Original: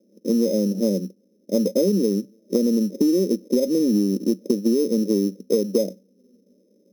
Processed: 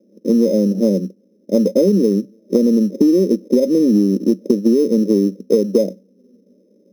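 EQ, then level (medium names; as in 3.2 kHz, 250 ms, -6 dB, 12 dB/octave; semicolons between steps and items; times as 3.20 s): treble shelf 3.6 kHz -10 dB; +6.0 dB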